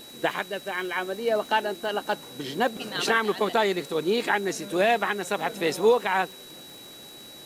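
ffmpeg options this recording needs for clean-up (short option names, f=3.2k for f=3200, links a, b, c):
-af "adeclick=t=4,bandreject=f=3.9k:w=30,afwtdn=0.0035"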